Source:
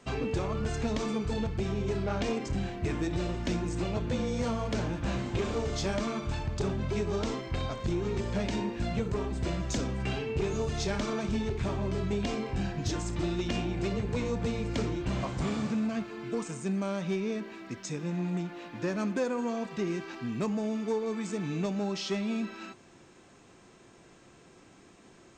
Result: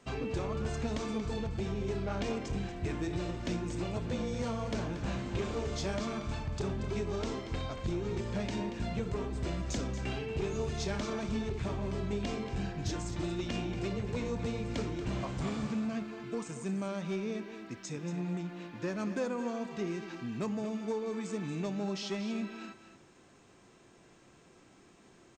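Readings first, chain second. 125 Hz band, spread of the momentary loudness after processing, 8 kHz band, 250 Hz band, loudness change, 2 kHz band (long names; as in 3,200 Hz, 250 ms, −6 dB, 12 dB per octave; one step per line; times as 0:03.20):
−3.5 dB, 3 LU, −3.5 dB, −3.5 dB, −3.5 dB, −3.5 dB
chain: single-tap delay 232 ms −11 dB
level −4 dB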